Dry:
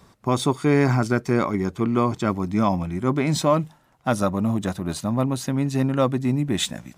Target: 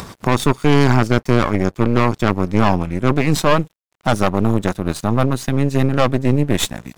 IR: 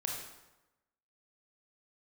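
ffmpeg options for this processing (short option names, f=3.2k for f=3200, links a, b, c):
-af "aeval=exprs='0.473*(cos(1*acos(clip(val(0)/0.473,-1,1)))-cos(1*PI/2))+0.106*(cos(6*acos(clip(val(0)/0.473,-1,1)))-cos(6*PI/2))':c=same,acompressor=mode=upward:threshold=-20dB:ratio=2.5,aeval=exprs='sgn(val(0))*max(abs(val(0))-0.00596,0)':c=same,volume=3.5dB"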